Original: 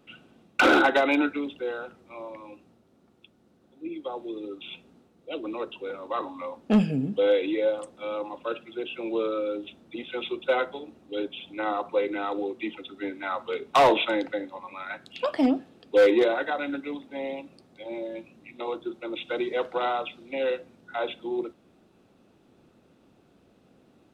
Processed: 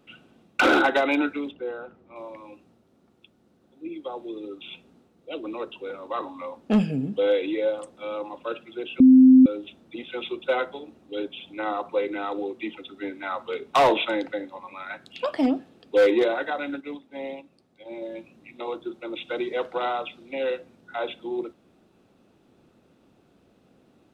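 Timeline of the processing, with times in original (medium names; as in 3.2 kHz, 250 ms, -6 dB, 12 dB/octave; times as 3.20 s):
1.51–2.16 s: low-pass 1.2 kHz 6 dB/octave
9.00–9.46 s: bleep 259 Hz -8.5 dBFS
16.68–18.02 s: upward expansion, over -45 dBFS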